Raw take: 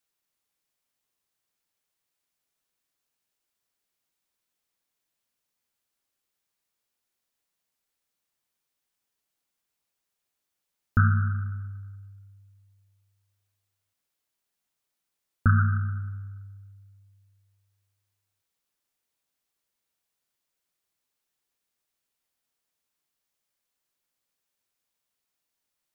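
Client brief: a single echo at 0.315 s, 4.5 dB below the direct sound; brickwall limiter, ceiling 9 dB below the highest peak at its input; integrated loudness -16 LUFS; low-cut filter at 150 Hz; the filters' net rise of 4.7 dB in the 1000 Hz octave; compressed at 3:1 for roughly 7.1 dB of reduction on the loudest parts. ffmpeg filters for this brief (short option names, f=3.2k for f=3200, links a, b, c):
-af "highpass=150,equalizer=f=1k:t=o:g=7.5,acompressor=threshold=-27dB:ratio=3,alimiter=limit=-24dB:level=0:latency=1,aecho=1:1:315:0.596,volume=21dB"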